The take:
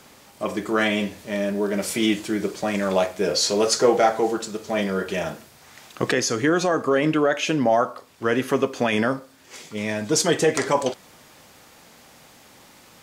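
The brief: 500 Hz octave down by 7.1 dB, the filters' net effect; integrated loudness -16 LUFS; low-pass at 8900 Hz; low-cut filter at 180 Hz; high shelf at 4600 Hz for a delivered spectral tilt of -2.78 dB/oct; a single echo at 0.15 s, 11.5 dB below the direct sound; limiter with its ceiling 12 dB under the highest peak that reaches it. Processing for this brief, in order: HPF 180 Hz; LPF 8900 Hz; bell 500 Hz -9 dB; high shelf 4600 Hz +7.5 dB; limiter -15.5 dBFS; echo 0.15 s -11.5 dB; gain +11 dB

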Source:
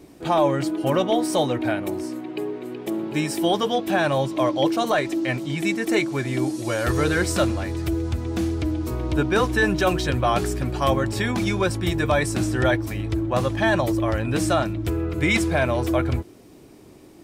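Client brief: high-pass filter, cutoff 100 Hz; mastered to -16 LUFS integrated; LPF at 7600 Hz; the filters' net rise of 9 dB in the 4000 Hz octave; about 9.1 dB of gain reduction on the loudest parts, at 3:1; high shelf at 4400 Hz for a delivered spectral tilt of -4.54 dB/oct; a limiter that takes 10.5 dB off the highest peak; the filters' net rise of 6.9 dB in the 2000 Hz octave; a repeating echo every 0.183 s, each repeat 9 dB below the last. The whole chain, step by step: HPF 100 Hz; LPF 7600 Hz; bell 2000 Hz +6 dB; bell 4000 Hz +6.5 dB; high shelf 4400 Hz +6 dB; compressor 3:1, threshold -23 dBFS; limiter -19.5 dBFS; feedback echo 0.183 s, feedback 35%, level -9 dB; gain +12 dB

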